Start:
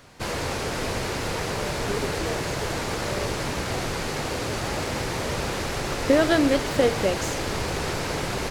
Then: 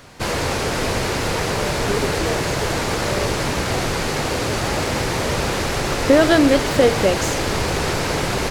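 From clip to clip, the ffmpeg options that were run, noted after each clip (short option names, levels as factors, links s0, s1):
-af "acontrast=71"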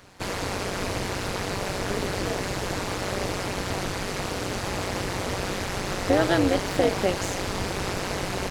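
-af "tremolo=f=190:d=0.889,volume=0.631"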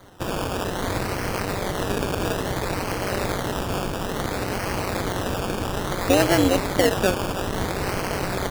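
-af "acrusher=samples=17:mix=1:aa=0.000001:lfo=1:lforange=10.2:lforate=0.59,volume=1.41"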